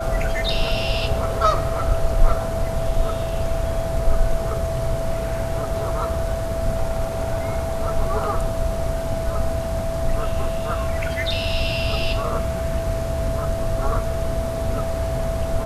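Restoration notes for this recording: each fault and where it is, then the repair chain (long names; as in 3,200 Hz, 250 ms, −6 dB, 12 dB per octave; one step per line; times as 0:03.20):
whistle 660 Hz −26 dBFS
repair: notch filter 660 Hz, Q 30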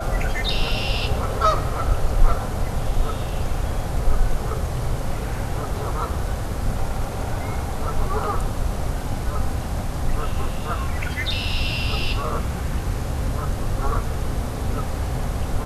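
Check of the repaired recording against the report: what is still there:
none of them is left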